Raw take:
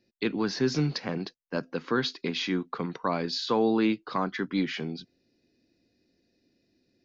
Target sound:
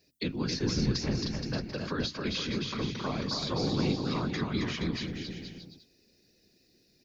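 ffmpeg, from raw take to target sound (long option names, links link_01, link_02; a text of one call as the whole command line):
ffmpeg -i in.wav -filter_complex "[0:a]lowshelf=frequency=300:gain=6,bandreject=frequency=60:width_type=h:width=6,bandreject=frequency=120:width_type=h:width=6,bandreject=frequency=180:width_type=h:width=6,bandreject=frequency=240:width_type=h:width=6,afftfilt=real='hypot(re,im)*cos(2*PI*random(0))':imag='hypot(re,im)*sin(2*PI*random(1))':win_size=512:overlap=0.75,crystalizer=i=5:c=0,acrossover=split=210[link_01][link_02];[link_02]acompressor=threshold=-41dB:ratio=2.5[link_03];[link_01][link_03]amix=inputs=2:normalize=0,asplit=2[link_04][link_05];[link_05]aecho=0:1:270|472.5|624.4|738.3|823.7:0.631|0.398|0.251|0.158|0.1[link_06];[link_04][link_06]amix=inputs=2:normalize=0,volume=3dB" out.wav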